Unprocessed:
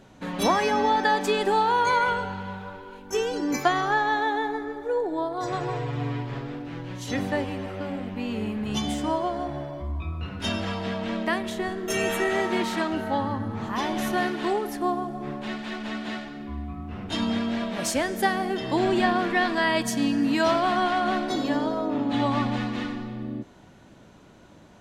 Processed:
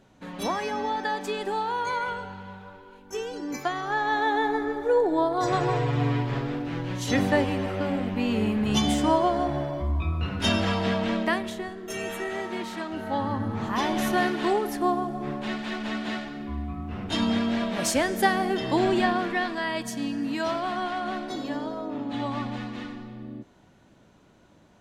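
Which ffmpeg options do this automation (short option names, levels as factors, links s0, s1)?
-af "volume=4.47,afade=t=in:st=3.82:d=0.85:silence=0.281838,afade=t=out:st=10.93:d=0.77:silence=0.266073,afade=t=in:st=12.88:d=0.57:silence=0.375837,afade=t=out:st=18.62:d=0.97:silence=0.421697"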